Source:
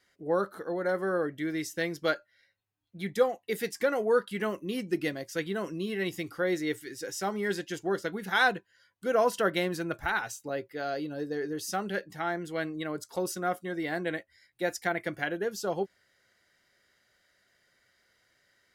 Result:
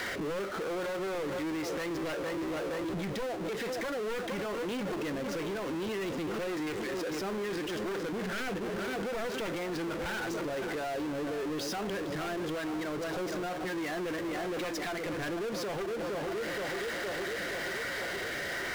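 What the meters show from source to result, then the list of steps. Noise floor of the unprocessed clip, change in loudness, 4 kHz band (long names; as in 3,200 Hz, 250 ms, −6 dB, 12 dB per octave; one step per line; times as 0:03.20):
−71 dBFS, −3.0 dB, 0.0 dB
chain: wavefolder on the positive side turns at −27 dBFS
high-frequency loss of the air 170 metres
rotating-speaker cabinet horn 1 Hz
upward compression, threshold −37 dBFS
leveller curve on the samples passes 1
bass and treble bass −7 dB, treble −6 dB
tape delay 467 ms, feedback 70%, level −12 dB, low-pass 1,500 Hz
downward compressor, threshold −43 dBFS, peak gain reduction 17.5 dB
power curve on the samples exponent 0.35
brickwall limiter −37 dBFS, peak gain reduction 6 dB
level +6 dB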